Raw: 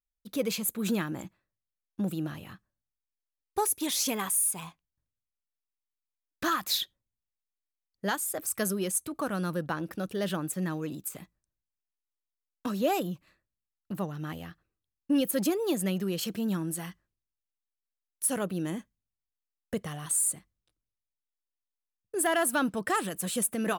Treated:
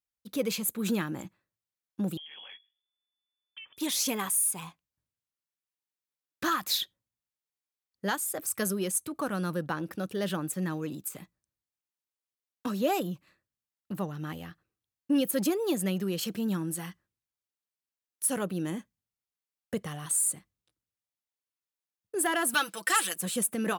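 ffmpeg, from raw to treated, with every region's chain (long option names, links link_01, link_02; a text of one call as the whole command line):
ffmpeg -i in.wav -filter_complex "[0:a]asettb=1/sr,asplit=3[link_01][link_02][link_03];[link_01]atrim=end=2.174[link_04];[link_02]atrim=start=2.17:end=3.77,asetpts=PTS-STARTPTS,afade=type=in:duration=0.004:curve=qsin,afade=type=out:start_time=1.596:duration=0.004:curve=qsin,bandreject=frequency=50:width_type=h:width=6,bandreject=frequency=100:width_type=h:width=6,bandreject=frequency=150:width_type=h:width=6,lowpass=frequency=3000:width_type=q:width=0.5098,lowpass=frequency=3000:width_type=q:width=0.6013,lowpass=frequency=3000:width_type=q:width=0.9,lowpass=frequency=3000:width_type=q:width=2.563,afreqshift=-3500,acompressor=threshold=-42dB:ratio=16:attack=3.2:release=140:knee=1:detection=peak[link_05];[link_03]atrim=start=3.766[link_06];[link_04][link_05]acrossfade=duration=0.004:curve1=hsin:curve2=qsin[link_07];[link_07][link_06]acrossfade=duration=0.004:curve1=qsin:curve2=hsin,asettb=1/sr,asplit=3[link_08][link_09][link_10];[link_08]atrim=end=22.544[link_11];[link_09]atrim=start=22.54:end=23.16,asetpts=PTS-STARTPTS,afade=type=in:duration=0.004:curve=qsin,afade=type=out:start_time=0.616:duration=0.004:curve=qsin,highpass=280,tiltshelf=frequency=1200:gain=-9.5,aecho=1:1:6:0.66,atrim=end_sample=27342[link_12];[link_10]atrim=start=23.156[link_13];[link_11][link_12]acrossfade=duration=0.004:curve1=hsin:curve2=qsin[link_14];[link_14][link_13]acrossfade=duration=0.004:curve1=qsin:curve2=hsin,highpass=81,bandreject=frequency=660:width=14" out.wav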